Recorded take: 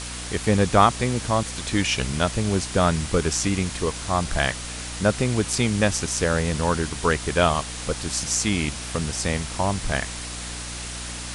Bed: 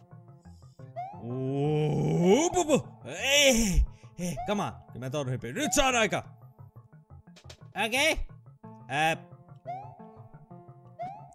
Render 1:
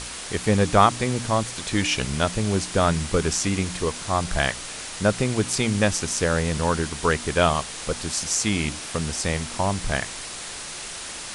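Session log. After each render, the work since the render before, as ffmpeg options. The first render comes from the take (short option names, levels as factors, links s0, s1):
-af "bandreject=f=60:t=h:w=4,bandreject=f=120:t=h:w=4,bandreject=f=180:t=h:w=4,bandreject=f=240:t=h:w=4,bandreject=f=300:t=h:w=4"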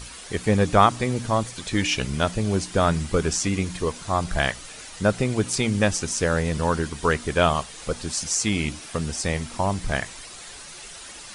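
-af "afftdn=nr=9:nf=-35"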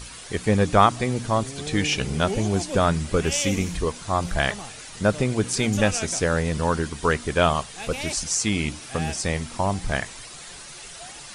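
-filter_complex "[1:a]volume=0.398[s0];[0:a][s0]amix=inputs=2:normalize=0"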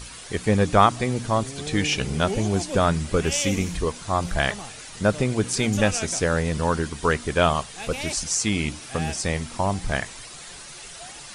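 -af anull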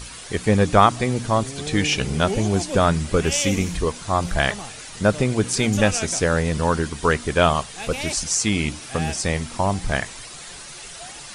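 -af "volume=1.33,alimiter=limit=0.891:level=0:latency=1"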